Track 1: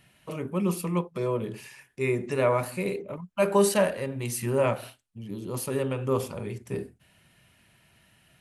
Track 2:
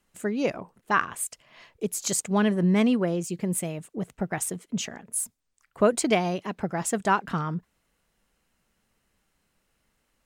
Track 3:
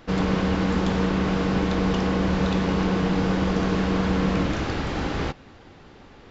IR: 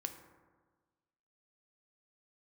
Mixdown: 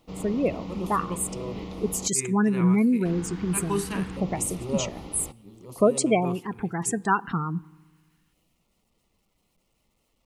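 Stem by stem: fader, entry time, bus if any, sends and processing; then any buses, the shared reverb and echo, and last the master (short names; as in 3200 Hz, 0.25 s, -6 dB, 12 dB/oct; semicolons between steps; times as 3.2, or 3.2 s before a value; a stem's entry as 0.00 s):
-3.5 dB, 0.15 s, no send, upward expander 1.5:1, over -39 dBFS
+0.5 dB, 0.00 s, send -13.5 dB, spectral gate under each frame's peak -20 dB strong
-13.5 dB, 0.00 s, muted 2.08–3.05, no send, dry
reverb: on, RT60 1.4 s, pre-delay 3 ms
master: requantised 12-bit, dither none; LFO notch square 0.24 Hz 590–1600 Hz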